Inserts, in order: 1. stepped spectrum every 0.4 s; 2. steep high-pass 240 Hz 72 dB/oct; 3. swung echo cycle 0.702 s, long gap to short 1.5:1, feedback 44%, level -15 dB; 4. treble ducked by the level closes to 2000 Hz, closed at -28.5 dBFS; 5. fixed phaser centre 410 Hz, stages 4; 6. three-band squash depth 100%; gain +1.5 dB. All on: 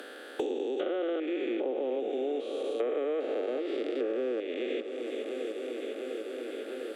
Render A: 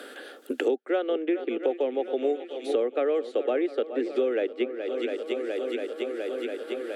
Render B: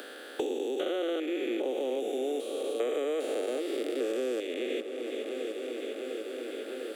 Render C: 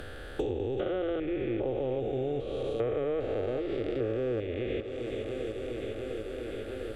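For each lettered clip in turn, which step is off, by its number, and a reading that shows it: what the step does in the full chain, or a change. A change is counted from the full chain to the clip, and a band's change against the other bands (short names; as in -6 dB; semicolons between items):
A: 1, 4 kHz band -2.0 dB; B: 4, 4 kHz band +4.0 dB; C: 2, 4 kHz band -2.0 dB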